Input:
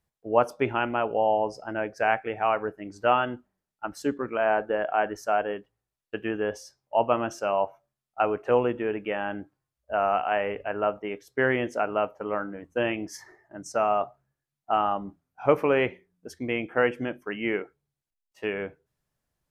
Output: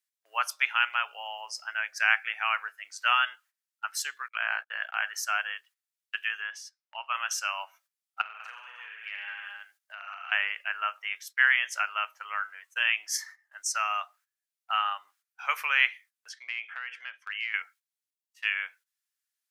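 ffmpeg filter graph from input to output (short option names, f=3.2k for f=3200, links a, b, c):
-filter_complex "[0:a]asettb=1/sr,asplit=3[a][b][c];[a]atrim=end=4.284[d];[b]atrim=start=4.28:end=5.03,asetpts=PTS-STARTPTS,afade=t=in:d=0.004:c=qsin,afade=t=out:st=0.746:d=0.004:c=qsin,highpass=300,agate=range=-38dB:threshold=-34dB:ratio=16:release=100:detection=peak,aeval=exprs='val(0)*sin(2*PI*30*n/s)':c=same[e];[c]atrim=start=5.026[f];[d][e]acrossfade=d=0.004:c1=hsin:c2=qsin[g];[g][f]acrossfade=d=0.004:c1=qsin:c2=hsin,asettb=1/sr,asplit=3[h][i][j];[h]atrim=end=6.414[k];[i]atrim=start=6.41:end=7.15,asetpts=PTS-STARTPTS,afade=t=in:d=0.004:c=qsin,afade=t=out:st=0.736:d=0.004:c=qsin,lowpass=f=1.9k:p=1,equalizer=f=480:w=1.2:g=-7.5[l];[j]atrim=start=7.146[m];[k][l]acrossfade=d=0.004:c1=hsin:c2=qsin[n];[n][m]acrossfade=d=0.004:c1=qsin:c2=hsin,asettb=1/sr,asplit=3[o][p][q];[o]atrim=end=8.214[r];[p]atrim=start=8.21:end=10.32,asetpts=PTS-STARTPTS,afade=t=in:d=0.004:c=qsin,afade=t=out:st=2.106:d=0.004:c=qsin,aecho=1:1:40|84|132.4|185.6|244.2|308.6:0.794|0.631|0.501|0.398|0.316|0.251,atrim=end_sample=93051,acompressor=threshold=-34dB:ratio=10:attack=3.2:release=140:knee=1:detection=peak[s];[q]atrim=start=10.316[t];[r][s]acrossfade=d=0.004:c1=hsin:c2=qsin[u];[u][t]acrossfade=d=0.004:c1=qsin:c2=hsin,asettb=1/sr,asplit=3[v][w][x];[v]atrim=end=16.294[y];[w]atrim=start=16.29:end=17.54,asetpts=PTS-STARTPTS,afade=t=in:d=0.004:c=qsin,afade=t=out:st=1.246:d=0.004:c=qsin,highpass=200,lowpass=3.8k,acompressor=threshold=-31dB:ratio=16:attack=3.2:release=140:knee=1:detection=peak[z];[x]atrim=start=17.536[aa];[y][z]acrossfade=d=0.004:c1=hsin:c2=qsin[ab];[ab][aa]acrossfade=d=0.004:c1=qsin:c2=hsin,agate=range=-12dB:threshold=-52dB:ratio=16:detection=peak,highpass=f=1.4k:w=0.5412,highpass=f=1.4k:w=1.3066,highshelf=f=2.5k:g=8.5,volume=4.5dB"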